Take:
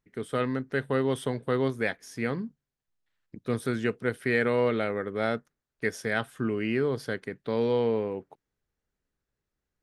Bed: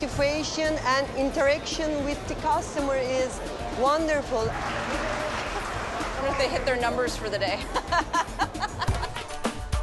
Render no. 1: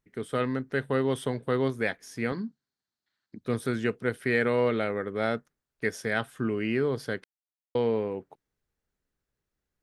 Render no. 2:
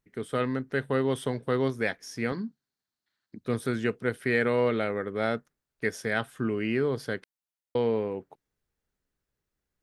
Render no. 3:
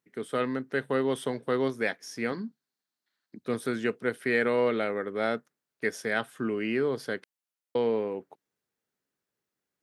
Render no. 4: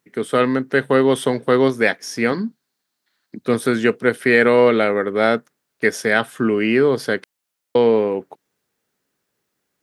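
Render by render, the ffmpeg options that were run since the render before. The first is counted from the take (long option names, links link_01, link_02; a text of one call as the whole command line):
ffmpeg -i in.wav -filter_complex "[0:a]asettb=1/sr,asplit=3[link_01][link_02][link_03];[link_01]atrim=end=2.324[link_04];[link_02]atrim=start=2.32:end=3.41,asetpts=PTS-STARTPTS,afade=type=in:duration=0.004:curve=qsin,afade=type=out:start_time=1.086:duration=0.004:curve=qsin,highpass=120,equalizer=frequency=150:width_type=q:width=4:gain=-6,equalizer=frequency=220:width_type=q:width=4:gain=3,equalizer=frequency=500:width_type=q:width=4:gain=-6,equalizer=frequency=1500:width_type=q:width=4:gain=4,equalizer=frequency=2600:width_type=q:width=4:gain=-5,equalizer=frequency=4300:width_type=q:width=4:gain=10,lowpass=frequency=7900:width=0.5412,lowpass=frequency=7900:width=1.3066[link_05];[link_03]atrim=start=3.406[link_06];[link_04][link_05]acrossfade=duration=0.004:curve1=hsin:curve2=qsin[link_07];[link_07][link_06]acrossfade=duration=0.004:curve1=qsin:curve2=hsin,asplit=3[link_08][link_09][link_10];[link_08]atrim=end=7.24,asetpts=PTS-STARTPTS,afade=type=out:start_time=7.236:duration=0.004:curve=hsin[link_11];[link_09]atrim=start=7.24:end=7.75,asetpts=PTS-STARTPTS,volume=0[link_12];[link_10]atrim=start=7.75,asetpts=PTS-STARTPTS,afade=type=in:duration=0.004:curve=hsin[link_13];[link_11][link_12][link_13]concat=n=3:v=0:a=1" out.wav
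ffmpeg -i in.wav -filter_complex "[0:a]asettb=1/sr,asplit=3[link_01][link_02][link_03];[link_01]atrim=end=1.254[link_04];[link_02]atrim=start=1.25:end=2.36,asetpts=PTS-STARTPTS,afade=type=in:duration=0.004:curve=qsin,afade=type=out:start_time=1.106:duration=0.004:curve=qsin,equalizer=frequency=5500:width_type=o:width=0.24:gain=7.5[link_05];[link_03]atrim=start=2.356[link_06];[link_04][link_05]acrossfade=duration=0.004:curve1=hsin:curve2=qsin[link_07];[link_07][link_06]acrossfade=duration=0.004:curve1=qsin:curve2=hsin" out.wav
ffmpeg -i in.wav -af "highpass=190" out.wav
ffmpeg -i in.wav -af "volume=12dB,alimiter=limit=-2dB:level=0:latency=1" out.wav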